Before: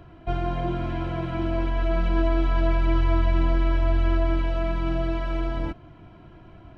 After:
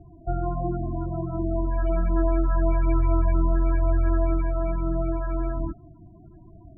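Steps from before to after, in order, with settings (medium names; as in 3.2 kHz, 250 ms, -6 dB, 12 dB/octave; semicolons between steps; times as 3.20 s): tracing distortion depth 0.074 ms; loudest bins only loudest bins 16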